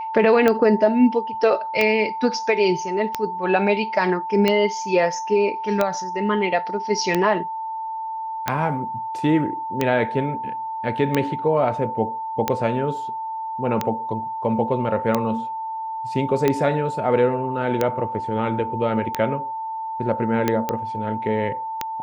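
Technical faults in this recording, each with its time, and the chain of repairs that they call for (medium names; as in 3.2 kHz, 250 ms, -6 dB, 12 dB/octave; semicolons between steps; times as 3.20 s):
tick 45 rpm -6 dBFS
whine 890 Hz -26 dBFS
20.69 s: pop -9 dBFS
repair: de-click; band-stop 890 Hz, Q 30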